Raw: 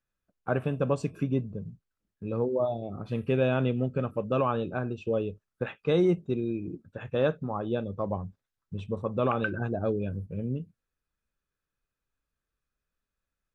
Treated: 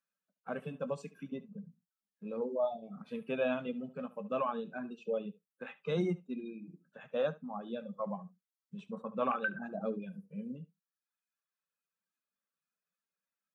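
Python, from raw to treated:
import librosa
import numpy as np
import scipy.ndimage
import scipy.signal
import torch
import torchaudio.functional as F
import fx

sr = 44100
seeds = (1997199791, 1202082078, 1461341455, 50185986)

y = fx.spec_quant(x, sr, step_db=15)
y = fx.dynamic_eq(y, sr, hz=1200.0, q=0.85, threshold_db=-42.0, ratio=4.0, max_db=4, at=(7.8, 9.86), fade=0.02)
y = scipy.signal.sosfilt(scipy.signal.butter(8, 170.0, 'highpass', fs=sr, output='sos'), y)
y = fx.peak_eq(y, sr, hz=330.0, db=-10.5, octaves=0.88)
y = fx.room_early_taps(y, sr, ms=(20, 71), db=(-15.5, -12.0))
y = fx.dereverb_blind(y, sr, rt60_s=1.0)
y = fx.hpss(y, sr, part='percussive', gain_db=-9)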